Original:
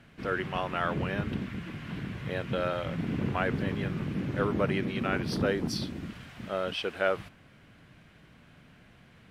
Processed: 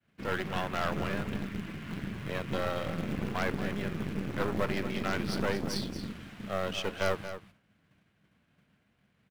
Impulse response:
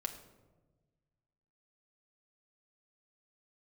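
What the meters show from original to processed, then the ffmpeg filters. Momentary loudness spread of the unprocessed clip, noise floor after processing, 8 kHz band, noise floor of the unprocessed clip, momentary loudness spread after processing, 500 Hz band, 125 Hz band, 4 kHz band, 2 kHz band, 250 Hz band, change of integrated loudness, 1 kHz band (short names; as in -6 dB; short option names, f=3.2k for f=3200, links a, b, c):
9 LU, -72 dBFS, +2.0 dB, -57 dBFS, 7 LU, -2.5 dB, -3.5 dB, -0.5 dB, -2.0 dB, -2.5 dB, -2.5 dB, -1.5 dB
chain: -filter_complex "[0:a]highpass=f=42:w=0.5412,highpass=f=42:w=1.3066,bandreject=f=60:t=h:w=6,bandreject=f=120:t=h:w=6,bandreject=f=180:t=h:w=6,bandreject=f=240:t=h:w=6,bandreject=f=300:t=h:w=6,agate=range=-33dB:threshold=-47dB:ratio=3:detection=peak,equalizer=f=200:t=o:w=0.22:g=6.5,acrossover=split=410|3000[a][b][c];[a]acompressor=threshold=-30dB:ratio=6[d];[d][b][c]amix=inputs=3:normalize=0,asplit=2[e][f];[f]acrusher=bits=2:mode=log:mix=0:aa=0.000001,volume=-9.5dB[g];[e][g]amix=inputs=2:normalize=0,aeval=exprs='0.316*(cos(1*acos(clip(val(0)/0.316,-1,1)))-cos(1*PI/2))+0.0631*(cos(4*acos(clip(val(0)/0.316,-1,1)))-cos(4*PI/2))+0.0355*(cos(5*acos(clip(val(0)/0.316,-1,1)))-cos(5*PI/2))+0.112*(cos(6*acos(clip(val(0)/0.316,-1,1)))-cos(6*PI/2))':c=same,aecho=1:1:230:0.282,volume=-8.5dB"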